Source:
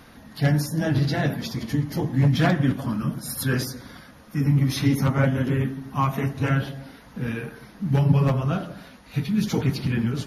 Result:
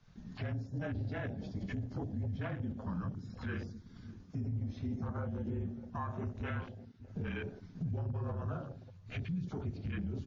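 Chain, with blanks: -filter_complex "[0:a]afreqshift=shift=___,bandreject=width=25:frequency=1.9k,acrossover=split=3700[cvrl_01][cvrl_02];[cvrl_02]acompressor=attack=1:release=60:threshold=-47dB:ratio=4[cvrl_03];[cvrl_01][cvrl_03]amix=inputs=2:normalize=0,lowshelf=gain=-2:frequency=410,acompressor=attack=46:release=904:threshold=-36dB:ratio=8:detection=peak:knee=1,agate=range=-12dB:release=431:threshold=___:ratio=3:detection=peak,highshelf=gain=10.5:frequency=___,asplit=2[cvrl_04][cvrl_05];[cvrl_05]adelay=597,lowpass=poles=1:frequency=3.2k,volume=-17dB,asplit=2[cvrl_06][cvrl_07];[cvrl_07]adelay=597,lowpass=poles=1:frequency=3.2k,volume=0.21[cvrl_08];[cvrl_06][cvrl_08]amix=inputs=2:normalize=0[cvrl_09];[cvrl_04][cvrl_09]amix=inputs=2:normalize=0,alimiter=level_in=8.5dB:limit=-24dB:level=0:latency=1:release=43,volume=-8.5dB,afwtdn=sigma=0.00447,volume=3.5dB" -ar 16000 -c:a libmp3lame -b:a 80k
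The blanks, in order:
-33, -42dB, 5.4k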